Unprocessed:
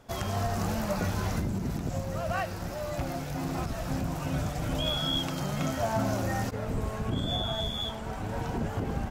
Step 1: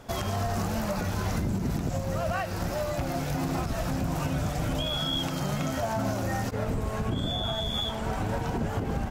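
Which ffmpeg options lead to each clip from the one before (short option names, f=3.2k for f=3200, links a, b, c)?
-af "alimiter=level_in=3.5dB:limit=-24dB:level=0:latency=1:release=238,volume=-3.5dB,volume=7.5dB"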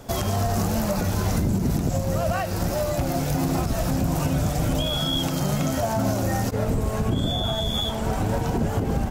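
-filter_complex "[0:a]highshelf=f=4.6k:g=10.5,acrossover=split=830|1500[a][b][c];[a]acontrast=54[d];[d][b][c]amix=inputs=3:normalize=0"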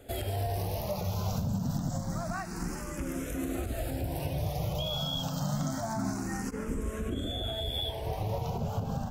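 -filter_complex "[0:a]asplit=2[a][b];[b]afreqshift=0.27[c];[a][c]amix=inputs=2:normalize=1,volume=-6.5dB"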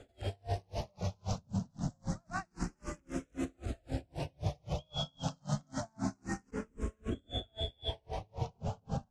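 -af "lowpass=f=7.8k:w=0.5412,lowpass=f=7.8k:w=1.3066,aeval=exprs='val(0)*pow(10,-40*(0.5-0.5*cos(2*PI*3.8*n/s))/20)':c=same,volume=1dB"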